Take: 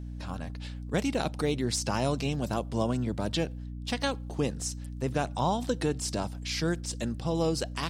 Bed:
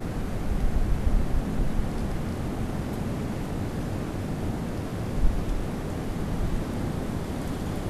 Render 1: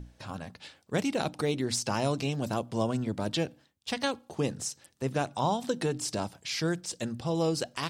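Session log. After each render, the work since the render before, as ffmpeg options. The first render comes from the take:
-af "bandreject=f=60:t=h:w=6,bandreject=f=120:t=h:w=6,bandreject=f=180:t=h:w=6,bandreject=f=240:t=h:w=6,bandreject=f=300:t=h:w=6"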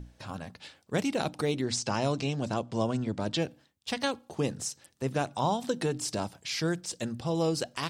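-filter_complex "[0:a]asettb=1/sr,asplit=3[s0][s1][s2];[s0]atrim=end=1.614[s3];[s1]atrim=start=1.61:end=3.42,asetpts=PTS-STARTPTS,afade=t=in:d=0.004:c=qsin,afade=t=out:st=1.806:d=0.004:c=qsin,lowpass=f=8200:w=0.5412,lowpass=f=8200:w=1.3066[s4];[s2]atrim=start=3.416[s5];[s3][s4]acrossfade=d=0.004:c1=hsin:c2=qsin[s6];[s6][s5]acrossfade=d=0.004:c1=qsin:c2=hsin"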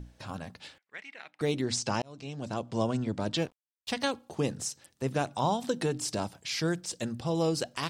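-filter_complex "[0:a]asettb=1/sr,asplit=3[s0][s1][s2];[s0]atrim=end=0.784[s3];[s1]atrim=start=0.78:end=1.41,asetpts=PTS-STARTPTS,afade=t=in:d=0.004:c=qsin,afade=t=out:st=0.626:d=0.004:c=qsin,bandpass=f=2000:t=q:w=4.4[s4];[s2]atrim=start=1.406[s5];[s3][s4]acrossfade=d=0.004:c1=hsin:c2=qsin[s6];[s6][s5]acrossfade=d=0.004:c1=qsin:c2=hsin,asettb=1/sr,asplit=3[s7][s8][s9];[s7]atrim=end=3.374[s10];[s8]atrim=start=3.37:end=3.89,asetpts=PTS-STARTPTS,afade=t=in:d=0.004:c=qsin,afade=t=out:st=0.516:d=0.004:c=qsin,aeval=exprs='sgn(val(0))*max(abs(val(0))-0.00422,0)':c=same[s11];[s9]atrim=start=3.886[s12];[s10][s11]acrossfade=d=0.004:c1=hsin:c2=qsin[s13];[s13][s12]acrossfade=d=0.004:c1=qsin:c2=hsin,asplit=2[s14][s15];[s14]atrim=end=2.02,asetpts=PTS-STARTPTS,afade=t=out:st=2.016:d=0.004:c=hsin[s16];[s15]atrim=start=2.02,asetpts=PTS-STARTPTS,afade=t=in:d=0.76[s17];[s16][s17]concat=n=2:v=0:a=1"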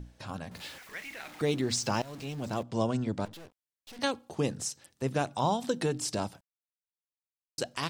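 -filter_complex "[0:a]asettb=1/sr,asplit=3[s0][s1][s2];[s0]atrim=end=0.514[s3];[s1]atrim=start=0.51:end=2.63,asetpts=PTS-STARTPTS,afade=t=in:d=0.004:c=qsin,afade=t=out:st=2.116:d=0.004:c=qsin,aeval=exprs='val(0)+0.5*0.00668*sgn(val(0))':c=same[s4];[s2]atrim=start=2.626[s5];[s3][s4]acrossfade=d=0.004:c1=hsin:c2=qsin[s6];[s6][s5]acrossfade=d=0.004:c1=qsin:c2=hsin,asettb=1/sr,asplit=3[s7][s8][s9];[s7]atrim=end=3.254[s10];[s8]atrim=start=3.25:end=3.99,asetpts=PTS-STARTPTS,afade=t=in:d=0.004:c=qsin,afade=t=out:st=0.736:d=0.004:c=qsin,aeval=exprs='(tanh(224*val(0)+0.55)-tanh(0.55))/224':c=same[s11];[s9]atrim=start=3.986[s12];[s10][s11]acrossfade=d=0.004:c1=hsin:c2=qsin[s13];[s13][s12]acrossfade=d=0.004:c1=qsin:c2=hsin,asplit=3[s14][s15][s16];[s14]atrim=end=6.41,asetpts=PTS-STARTPTS,afade=t=out:st=6.406:d=0.004:c=hsin[s17];[s15]atrim=start=6.41:end=7.58,asetpts=PTS-STARTPTS,volume=0[s18];[s16]atrim=start=7.58,asetpts=PTS-STARTPTS,afade=t=in:d=0.004:c=hsin[s19];[s17][s18][s19]concat=n=3:v=0:a=1"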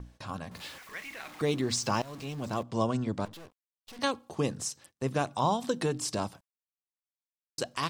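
-af "agate=range=0.112:threshold=0.00178:ratio=16:detection=peak,equalizer=f=1100:t=o:w=0.2:g=7"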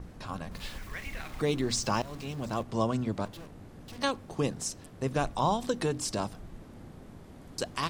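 -filter_complex "[1:a]volume=0.119[s0];[0:a][s0]amix=inputs=2:normalize=0"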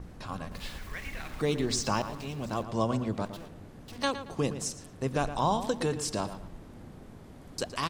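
-filter_complex "[0:a]asplit=2[s0][s1];[s1]adelay=114,lowpass=f=3800:p=1,volume=0.282,asplit=2[s2][s3];[s3]adelay=114,lowpass=f=3800:p=1,volume=0.35,asplit=2[s4][s5];[s5]adelay=114,lowpass=f=3800:p=1,volume=0.35,asplit=2[s6][s7];[s7]adelay=114,lowpass=f=3800:p=1,volume=0.35[s8];[s0][s2][s4][s6][s8]amix=inputs=5:normalize=0"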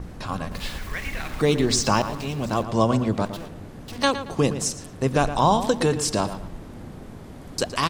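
-af "volume=2.66"

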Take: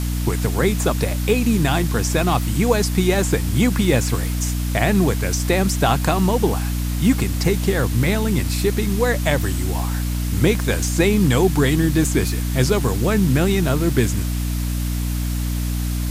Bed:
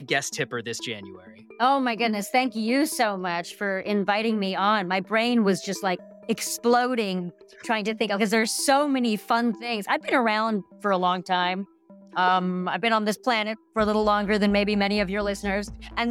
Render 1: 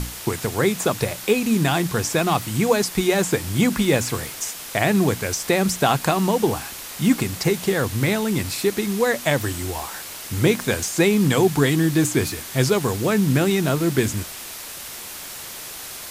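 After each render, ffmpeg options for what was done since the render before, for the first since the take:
-af "bandreject=f=60:t=h:w=6,bandreject=f=120:t=h:w=6,bandreject=f=180:t=h:w=6,bandreject=f=240:t=h:w=6,bandreject=f=300:t=h:w=6"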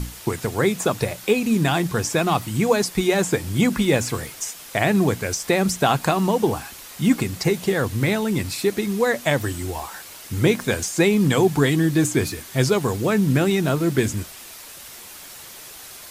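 -af "afftdn=nr=6:nf=-35"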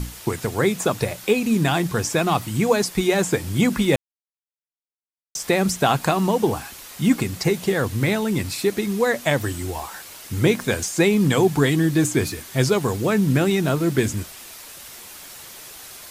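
-filter_complex "[0:a]asplit=3[s0][s1][s2];[s0]atrim=end=3.96,asetpts=PTS-STARTPTS,afade=t=out:st=3.956:d=0.004:c=hsin[s3];[s1]atrim=start=3.96:end=5.35,asetpts=PTS-STARTPTS,volume=0[s4];[s2]atrim=start=5.35,asetpts=PTS-STARTPTS,afade=t=in:d=0.004:c=hsin[s5];[s3][s4][s5]concat=n=3:v=0:a=1"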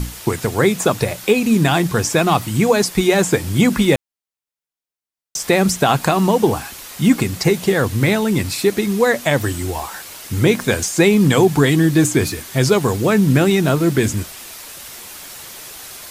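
-af "volume=1.78,alimiter=limit=0.708:level=0:latency=1"

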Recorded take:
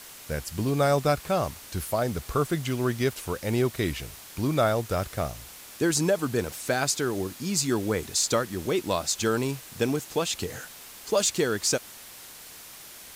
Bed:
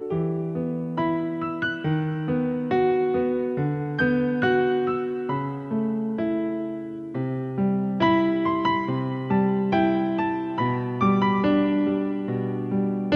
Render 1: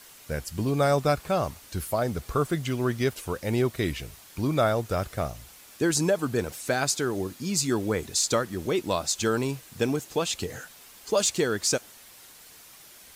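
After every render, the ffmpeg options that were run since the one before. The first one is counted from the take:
-af "afftdn=nr=6:nf=-46"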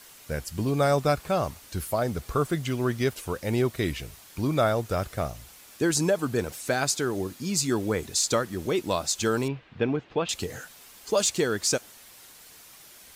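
-filter_complex "[0:a]asettb=1/sr,asplit=3[s0][s1][s2];[s0]atrim=end=9.484[s3];[s1]atrim=start=9.48:end=10.29,asetpts=PTS-STARTPTS,afade=t=in:d=0.004:c=qsin,afade=t=out:st=0.806:d=0.004:c=qsin,lowpass=f=3100:w=0.5412,lowpass=f=3100:w=1.3066[s4];[s2]atrim=start=10.286[s5];[s3][s4]acrossfade=d=0.004:c1=hsin:c2=qsin[s6];[s6][s5]acrossfade=d=0.004:c1=qsin:c2=hsin"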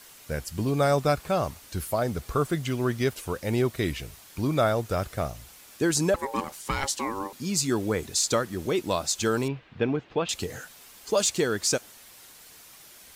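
-filter_complex "[0:a]asettb=1/sr,asplit=3[s0][s1][s2];[s0]atrim=end=6.144[s3];[s1]atrim=start=6.14:end=7.33,asetpts=PTS-STARTPTS,afade=t=in:d=0.004:c=qsin,afade=t=out:st=1.186:d=0.004:c=qsin,aeval=exprs='val(0)*sin(2*PI*680*n/s)':c=same[s4];[s2]atrim=start=7.326[s5];[s3][s4]acrossfade=d=0.004:c1=hsin:c2=qsin[s6];[s6][s5]acrossfade=d=0.004:c1=qsin:c2=hsin"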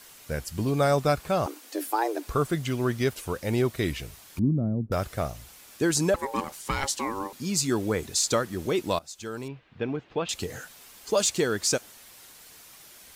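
-filter_complex "[0:a]asettb=1/sr,asplit=3[s0][s1][s2];[s0]atrim=end=1.464[s3];[s1]atrim=start=1.46:end=2.27,asetpts=PTS-STARTPTS,afade=t=in:d=0.004:c=qsin,afade=t=out:st=0.806:d=0.004:c=qsin,afreqshift=220[s4];[s2]atrim=start=2.266[s5];[s3][s4]acrossfade=d=0.004:c1=hsin:c2=qsin[s6];[s6][s5]acrossfade=d=0.004:c1=qsin:c2=hsin,asettb=1/sr,asplit=3[s7][s8][s9];[s7]atrim=end=4.394[s10];[s8]atrim=start=4.39:end=4.92,asetpts=PTS-STARTPTS,afade=t=in:d=0.004:c=qsin,afade=t=out:st=0.526:d=0.004:c=qsin,lowpass=f=220:t=q:w=2.4[s11];[s9]atrim=start=4.916[s12];[s10][s11]acrossfade=d=0.004:c1=hsin:c2=qsin[s13];[s13][s12]acrossfade=d=0.004:c1=qsin:c2=hsin,asplit=2[s14][s15];[s14]atrim=end=8.99,asetpts=PTS-STARTPTS,afade=t=out:st=8.986:d=0.004:c=hsin:silence=0.11885[s16];[s15]atrim=start=8.99,asetpts=PTS-STARTPTS,afade=t=in:d=1.58:silence=0.11885[s17];[s16][s17]concat=n=2:v=0:a=1"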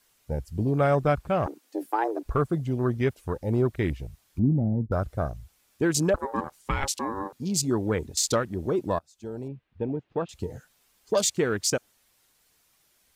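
-af "afwtdn=0.02,lowshelf=f=90:g=7"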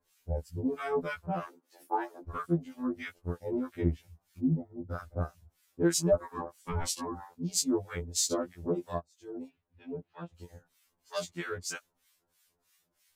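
-filter_complex "[0:a]acrossover=split=1100[s0][s1];[s0]aeval=exprs='val(0)*(1-1/2+1/2*cos(2*PI*3.1*n/s))':c=same[s2];[s1]aeval=exprs='val(0)*(1-1/2-1/2*cos(2*PI*3.1*n/s))':c=same[s3];[s2][s3]amix=inputs=2:normalize=0,afftfilt=real='re*2*eq(mod(b,4),0)':imag='im*2*eq(mod(b,4),0)':win_size=2048:overlap=0.75"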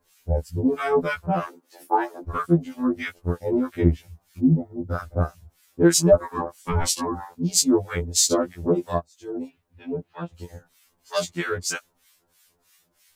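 -af "volume=3.16"

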